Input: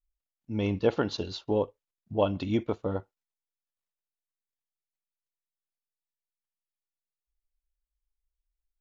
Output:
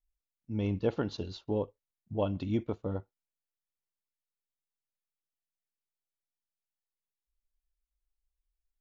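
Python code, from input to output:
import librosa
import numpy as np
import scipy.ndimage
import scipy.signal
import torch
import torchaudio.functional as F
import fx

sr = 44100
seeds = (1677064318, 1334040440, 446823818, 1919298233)

y = fx.low_shelf(x, sr, hz=310.0, db=8.0)
y = y * librosa.db_to_amplitude(-8.0)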